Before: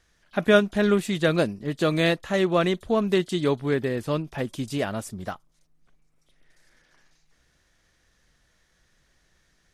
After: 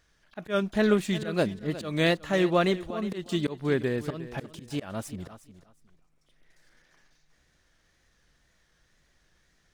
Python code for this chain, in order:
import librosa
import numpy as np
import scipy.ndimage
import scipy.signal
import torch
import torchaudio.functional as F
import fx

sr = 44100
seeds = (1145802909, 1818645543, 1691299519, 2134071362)

y = scipy.ndimage.median_filter(x, 3, mode='constant')
y = fx.auto_swell(y, sr, attack_ms=201.0)
y = fx.wow_flutter(y, sr, seeds[0], rate_hz=2.1, depth_cents=69.0)
y = fx.echo_feedback(y, sr, ms=360, feedback_pct=20, wet_db=-15.0)
y = y * 10.0 ** (-1.5 / 20.0)